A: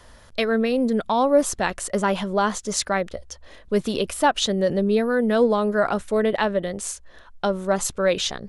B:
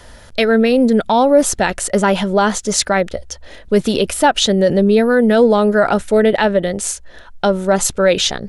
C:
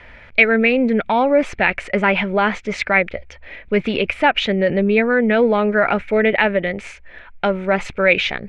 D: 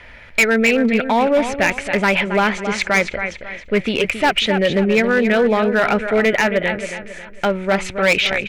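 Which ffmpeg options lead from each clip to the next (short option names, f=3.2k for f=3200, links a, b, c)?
-filter_complex "[0:a]asplit=2[a][b];[b]alimiter=limit=-13.5dB:level=0:latency=1:release=23,volume=2.5dB[c];[a][c]amix=inputs=2:normalize=0,bandreject=f=1.1k:w=6.1,volume=1.5dB"
-af "lowpass=f=2.3k:t=q:w=8,volume=-4.5dB"
-filter_complex "[0:a]crystalizer=i=2:c=0,asplit=2[a][b];[b]aecho=0:1:272|544|816|1088:0.316|0.117|0.0433|0.016[c];[a][c]amix=inputs=2:normalize=0,asoftclip=type=hard:threshold=-9.5dB"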